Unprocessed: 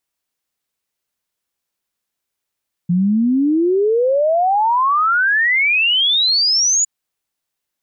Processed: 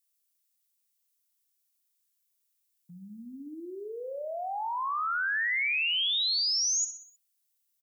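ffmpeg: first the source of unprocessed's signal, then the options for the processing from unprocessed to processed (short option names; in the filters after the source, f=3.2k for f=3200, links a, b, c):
-f lavfi -i "aevalsrc='0.251*clip(min(t,3.96-t)/0.01,0,1)*sin(2*PI*170*3.96/log(7000/170)*(exp(log(7000/170)*t/3.96)-1))':d=3.96:s=44100"
-af "aderivative,acompressor=threshold=-27dB:ratio=10,aecho=1:1:63|126|189|252|315:0.282|0.144|0.0733|0.0374|0.0191"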